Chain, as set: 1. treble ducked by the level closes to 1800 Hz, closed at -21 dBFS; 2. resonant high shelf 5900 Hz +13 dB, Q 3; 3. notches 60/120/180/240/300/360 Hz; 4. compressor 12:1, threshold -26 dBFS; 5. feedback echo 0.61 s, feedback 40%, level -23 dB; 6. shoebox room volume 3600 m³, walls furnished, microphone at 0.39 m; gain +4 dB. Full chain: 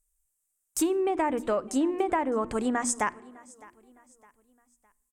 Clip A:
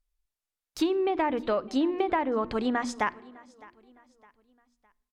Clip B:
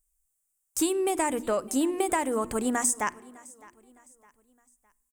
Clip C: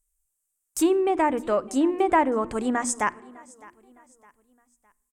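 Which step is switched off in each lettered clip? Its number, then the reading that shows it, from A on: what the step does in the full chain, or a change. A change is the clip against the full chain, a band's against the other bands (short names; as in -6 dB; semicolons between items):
2, 8 kHz band -14.0 dB; 1, 8 kHz band +5.0 dB; 4, mean gain reduction 3.0 dB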